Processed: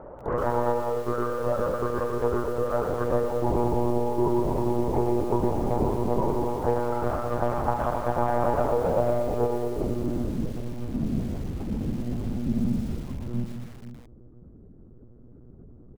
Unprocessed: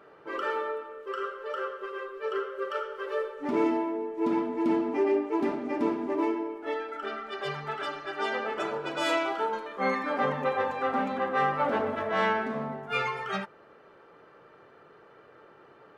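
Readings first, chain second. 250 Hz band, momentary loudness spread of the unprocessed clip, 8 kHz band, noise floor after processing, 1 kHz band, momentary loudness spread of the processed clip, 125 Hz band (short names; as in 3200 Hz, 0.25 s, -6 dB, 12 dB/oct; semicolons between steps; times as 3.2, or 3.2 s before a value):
+3.5 dB, 9 LU, n/a, -49 dBFS, +1.0 dB, 8 LU, +16.5 dB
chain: octaver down 2 oct, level +4 dB; HPF 40 Hz 6 dB/oct; dynamic EQ 100 Hz, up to -3 dB, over -40 dBFS, Q 2.3; compressor 12:1, threshold -31 dBFS, peak gain reduction 12.5 dB; low-pass sweep 790 Hz -> 210 Hz, 8.62–10.43; tapped delay 0.205/0.478/0.545 s -11/-16/-20 dB; monotone LPC vocoder at 8 kHz 120 Hz; lo-fi delay 0.12 s, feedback 55%, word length 8-bit, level -9.5 dB; gain +8 dB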